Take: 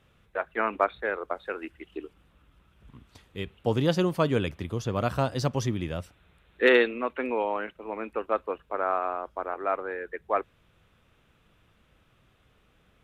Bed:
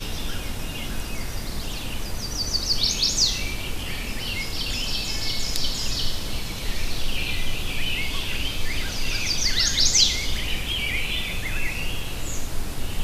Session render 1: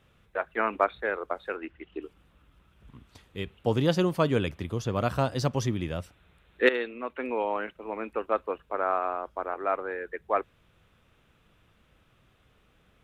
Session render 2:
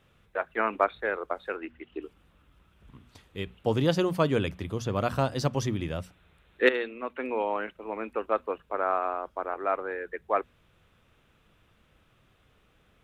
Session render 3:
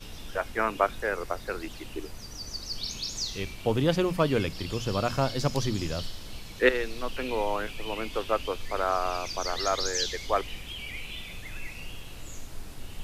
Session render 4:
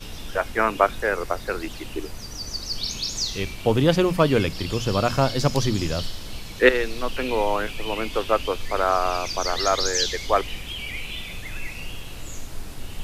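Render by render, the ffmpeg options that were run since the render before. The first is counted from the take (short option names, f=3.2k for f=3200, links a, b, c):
-filter_complex "[0:a]asettb=1/sr,asplit=3[a][b][c];[a]atrim=end=1.564[d];[b]atrim=start=1.56:end=2.02,asetpts=PTS-STARTPTS,afade=t=in:d=0.004:c=qsin,afade=t=out:st=0.456:d=0.004:c=qsin,lowpass=3.2k[e];[c]atrim=start=2.016[f];[d][e]acrossfade=d=0.004:c1=hsin:c2=qsin[g];[g][f]acrossfade=d=0.004:c1=qsin:c2=hsin,asplit=2[h][i];[h]atrim=end=6.69,asetpts=PTS-STARTPTS,afade=t=out:st=6.686:d=0.004:c=hsin:silence=0.237137[j];[i]atrim=start=6.69,asetpts=PTS-STARTPTS,afade=t=in:d=0.85:silence=0.237137[k];[j][k]concat=n=2:v=0:a=1"
-af "bandreject=f=60:t=h:w=6,bandreject=f=120:t=h:w=6,bandreject=f=180:t=h:w=6,bandreject=f=240:t=h:w=6"
-filter_complex "[1:a]volume=-12.5dB[a];[0:a][a]amix=inputs=2:normalize=0"
-af "volume=6dB"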